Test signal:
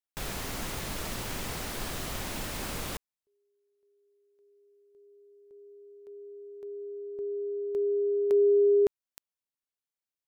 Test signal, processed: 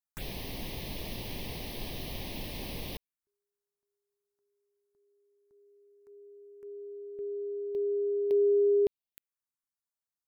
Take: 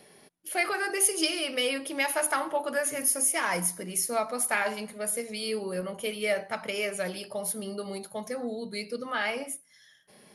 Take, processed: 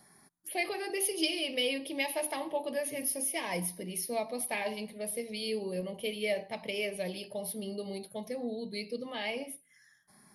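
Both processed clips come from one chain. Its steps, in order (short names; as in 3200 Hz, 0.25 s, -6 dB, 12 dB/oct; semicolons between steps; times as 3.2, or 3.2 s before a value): envelope phaser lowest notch 440 Hz, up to 1400 Hz, full sweep at -34 dBFS; gain -1.5 dB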